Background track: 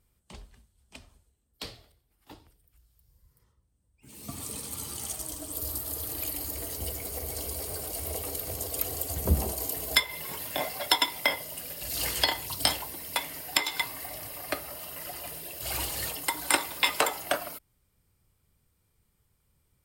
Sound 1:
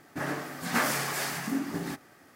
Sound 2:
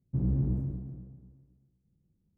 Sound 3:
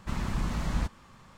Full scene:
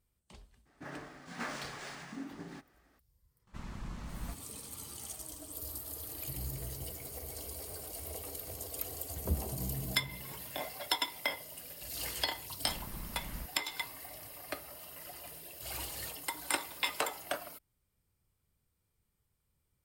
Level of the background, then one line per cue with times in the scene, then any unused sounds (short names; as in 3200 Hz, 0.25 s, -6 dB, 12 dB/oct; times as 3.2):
background track -8.5 dB
0.65 add 1 -12.5 dB, fades 0.02 s + decimation joined by straight lines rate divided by 3×
3.47 add 3 -12.5 dB
6.14 add 2 -17 dB + comb 2.2 ms, depth 97%
9.38 add 2 -11.5 dB
12.59 add 3 -14.5 dB